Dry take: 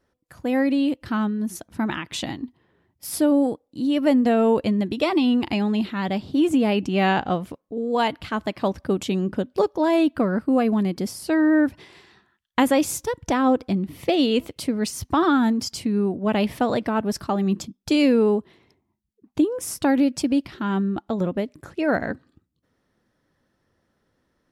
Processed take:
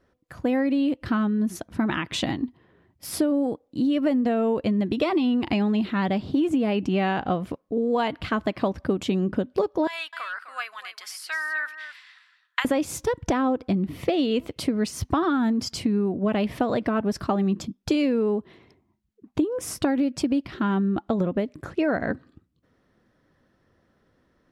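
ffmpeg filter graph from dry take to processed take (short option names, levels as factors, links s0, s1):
-filter_complex "[0:a]asettb=1/sr,asplit=3[s0][s1][s2];[s0]atrim=end=9.874[s3];[s1]atrim=start=9.87:end=12.65,asetpts=PTS-STARTPTS,afade=t=in:d=0.004:c=qsin,afade=t=out:st=2.776:d=0.004:c=qsin,highpass=f=1300:w=0.5412,highpass=f=1300:w=1.3066,aecho=1:1:256:0.266,atrim=end_sample=122598[s4];[s2]atrim=start=12.646[s5];[s3][s4]acrossfade=d=0.004:c1=hsin:c2=qsin[s6];[s6][s5]acrossfade=d=0.004:c1=qsin:c2=hsin,highshelf=f=5100:g=-10.5,bandreject=f=870:w=15,acompressor=threshold=0.0562:ratio=6,volume=1.78"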